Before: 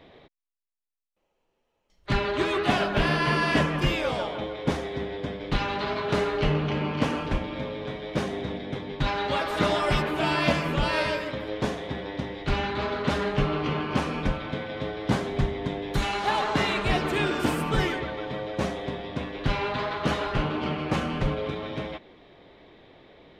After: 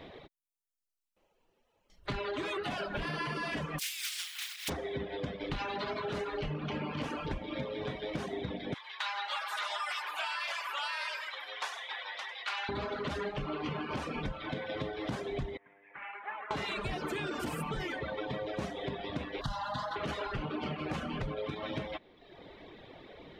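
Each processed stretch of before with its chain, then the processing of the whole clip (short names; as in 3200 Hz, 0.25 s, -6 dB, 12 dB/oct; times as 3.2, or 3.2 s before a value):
3.78–4.68 spectral contrast lowered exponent 0.27 + ladder high-pass 1600 Hz, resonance 20%
8.74–12.69 HPF 910 Hz 24 dB/oct + echo 99 ms -8.5 dB
15.57–16.51 steep low-pass 2300 Hz 48 dB/oct + differentiator
19.41–19.96 high shelf 3300 Hz +7.5 dB + fixed phaser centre 980 Hz, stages 4
whole clip: reverb removal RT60 0.98 s; limiter -21.5 dBFS; compressor, threshold -37 dBFS; gain +3.5 dB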